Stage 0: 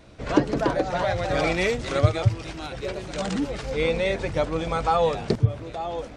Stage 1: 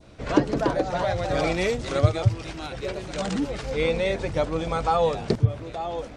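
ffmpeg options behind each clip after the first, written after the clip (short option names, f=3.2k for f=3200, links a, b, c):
-af "adynamicequalizer=threshold=0.0141:dfrequency=2000:dqfactor=0.95:tfrequency=2000:tqfactor=0.95:attack=5:release=100:ratio=0.375:range=2:mode=cutabove:tftype=bell"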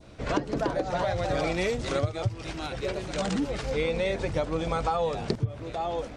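-af "acompressor=threshold=-23dB:ratio=10"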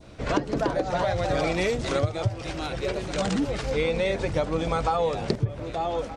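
-filter_complex "[0:a]asplit=2[a][b];[b]adelay=1224,volume=-15dB,highshelf=f=4k:g=-27.6[c];[a][c]amix=inputs=2:normalize=0,volume=2.5dB"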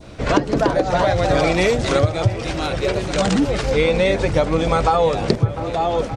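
-filter_complex "[0:a]asplit=2[a][b];[b]adelay=699.7,volume=-14dB,highshelf=f=4k:g=-15.7[c];[a][c]amix=inputs=2:normalize=0,volume=8dB"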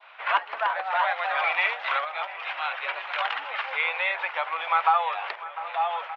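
-af "asuperpass=centerf=1600:order=8:qfactor=0.71"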